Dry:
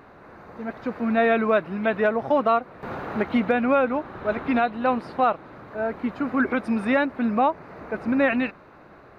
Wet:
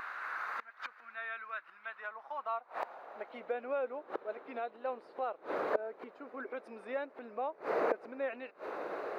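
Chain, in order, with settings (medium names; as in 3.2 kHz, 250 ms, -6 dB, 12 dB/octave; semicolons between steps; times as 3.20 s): inverted gate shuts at -28 dBFS, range -26 dB; high-pass sweep 1.4 kHz -> 460 Hz, 1.73–3.66 s; wow and flutter 26 cents; trim +6 dB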